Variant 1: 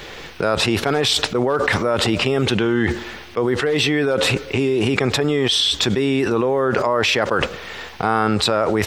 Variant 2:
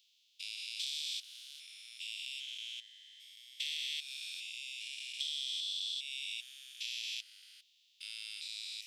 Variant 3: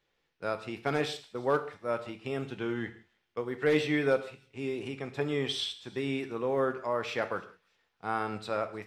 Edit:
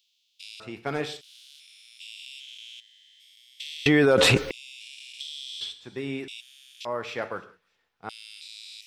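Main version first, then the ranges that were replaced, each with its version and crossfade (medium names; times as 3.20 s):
2
0.60–1.21 s: from 3
3.86–4.51 s: from 1
5.61–6.28 s: from 3
6.85–8.09 s: from 3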